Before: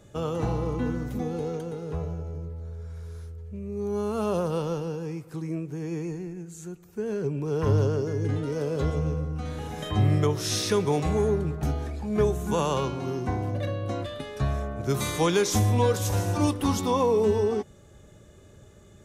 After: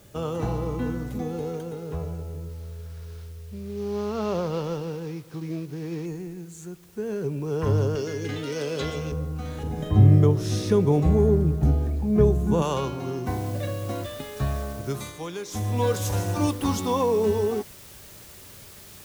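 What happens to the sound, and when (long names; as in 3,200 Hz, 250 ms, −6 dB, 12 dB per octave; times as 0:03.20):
0:02.49–0:06.06: variable-slope delta modulation 32 kbit/s
0:07.95–0:09.12: meter weighting curve D
0:09.63–0:12.62: tilt shelving filter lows +8 dB, about 650 Hz
0:13.27: noise floor change −59 dB −47 dB
0:14.71–0:15.91: duck −11.5 dB, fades 0.43 s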